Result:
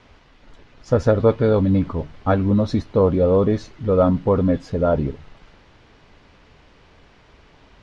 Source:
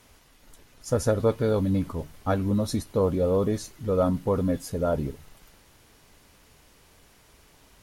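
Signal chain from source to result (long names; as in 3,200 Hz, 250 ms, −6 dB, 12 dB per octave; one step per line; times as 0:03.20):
Bessel low-pass filter 3,200 Hz, order 4
level +7 dB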